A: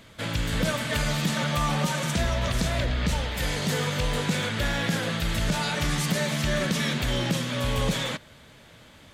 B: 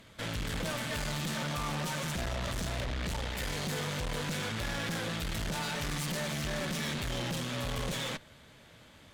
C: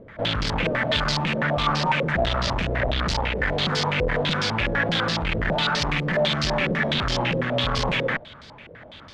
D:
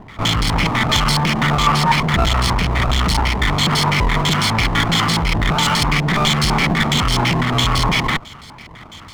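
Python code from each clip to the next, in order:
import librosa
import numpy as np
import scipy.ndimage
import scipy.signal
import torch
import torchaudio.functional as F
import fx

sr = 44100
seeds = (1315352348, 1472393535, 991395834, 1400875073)

y1 = fx.tube_stage(x, sr, drive_db=32.0, bias=0.8)
y2 = fx.filter_held_lowpass(y1, sr, hz=12.0, low_hz=480.0, high_hz=4900.0)
y2 = y2 * 10.0 ** (9.0 / 20.0)
y3 = fx.lower_of_two(y2, sr, delay_ms=0.94)
y3 = y3 * 10.0 ** (8.0 / 20.0)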